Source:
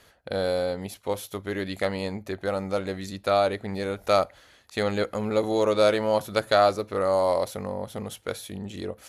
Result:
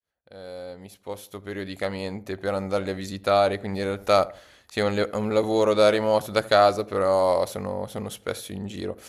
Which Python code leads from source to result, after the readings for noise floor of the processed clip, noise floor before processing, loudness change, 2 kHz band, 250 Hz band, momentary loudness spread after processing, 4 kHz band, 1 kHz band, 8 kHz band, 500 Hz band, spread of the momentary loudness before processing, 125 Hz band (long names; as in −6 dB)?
−58 dBFS, −57 dBFS, +2.0 dB, +1.5 dB, +1.5 dB, 19 LU, +1.5 dB, +2.0 dB, +1.0 dB, +1.5 dB, 13 LU, +1.0 dB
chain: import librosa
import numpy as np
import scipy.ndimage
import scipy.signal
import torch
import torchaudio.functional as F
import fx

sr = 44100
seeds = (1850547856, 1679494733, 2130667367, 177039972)

y = fx.fade_in_head(x, sr, length_s=2.82)
y = fx.echo_filtered(y, sr, ms=81, feedback_pct=37, hz=1100.0, wet_db=-18.5)
y = y * librosa.db_to_amplitude(2.0)